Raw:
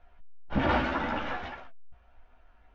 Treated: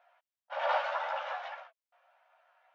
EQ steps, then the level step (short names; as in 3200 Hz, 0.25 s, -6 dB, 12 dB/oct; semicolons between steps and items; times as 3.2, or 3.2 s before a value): high shelf 4800 Hz -5.5 dB; dynamic EQ 2000 Hz, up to -5 dB, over -43 dBFS, Q 1.2; brick-wall FIR high-pass 510 Hz; 0.0 dB